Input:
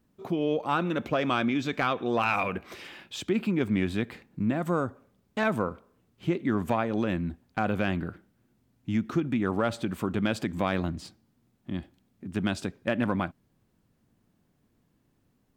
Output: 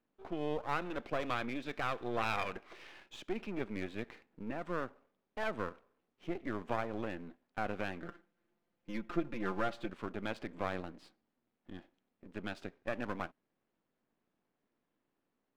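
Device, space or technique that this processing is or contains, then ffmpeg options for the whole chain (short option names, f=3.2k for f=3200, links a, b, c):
crystal radio: -filter_complex "[0:a]highpass=330,lowpass=3.1k,aeval=exprs='if(lt(val(0),0),0.251*val(0),val(0))':c=same,asettb=1/sr,asplit=3[a][b][c];[a]atrim=end=8.034[d];[b]atrim=start=8.03:end=9.9,asetpts=PTS-STARTPTS,afade=t=in:d=0.004:c=qsin,afade=t=out:st=1.866:d=0.004:c=qsin,aecho=1:1:5.8:0.79,atrim=end_sample=82467[e];[c]atrim=start=9.896[f];[d][e]acrossfade=d=0.004:c1=hsin:c2=qsin[g];[g][f]acrossfade=d=0.004:c1=qsin:c2=hsin,volume=-4.5dB"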